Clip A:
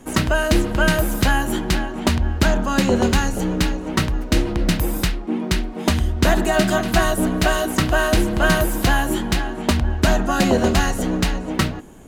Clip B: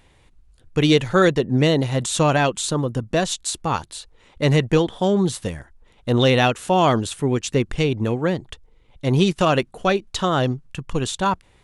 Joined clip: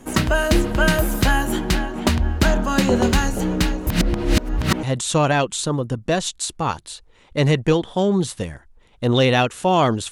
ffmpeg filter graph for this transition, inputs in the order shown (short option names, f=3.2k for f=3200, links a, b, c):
-filter_complex "[0:a]apad=whole_dur=10.11,atrim=end=10.11,asplit=2[a][b];[a]atrim=end=3.872[c];[b]atrim=start=3.868:end=4.832,asetpts=PTS-STARTPTS,areverse[d];[1:a]atrim=start=1.878:end=7.16[e];[c][d]acrossfade=d=0.004:c1=hsin:c2=hsin[f];[f][e]acrossfade=d=0.004:c1=hsin:c2=hsin"